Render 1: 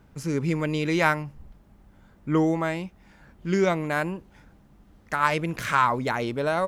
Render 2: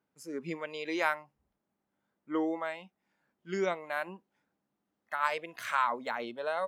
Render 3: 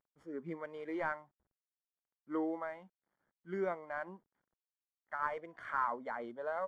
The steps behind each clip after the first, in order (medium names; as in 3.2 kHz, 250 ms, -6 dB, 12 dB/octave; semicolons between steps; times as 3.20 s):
spectral noise reduction 14 dB; high-pass 250 Hz 12 dB/octave; trim -7.5 dB
CVSD coder 64 kbps; Savitzky-Golay filter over 41 samples; trim -4 dB; MP3 56 kbps 32 kHz